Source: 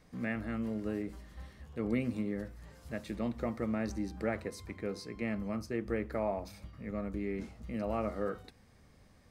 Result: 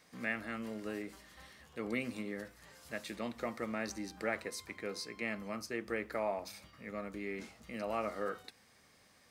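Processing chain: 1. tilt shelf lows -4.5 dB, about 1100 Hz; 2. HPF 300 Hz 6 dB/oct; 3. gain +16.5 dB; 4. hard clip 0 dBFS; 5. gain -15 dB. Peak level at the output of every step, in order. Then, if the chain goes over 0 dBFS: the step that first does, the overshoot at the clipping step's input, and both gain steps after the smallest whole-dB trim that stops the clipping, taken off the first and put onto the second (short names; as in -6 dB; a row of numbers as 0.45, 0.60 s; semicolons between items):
-22.0, -22.0, -5.5, -5.5, -20.5 dBFS; no overload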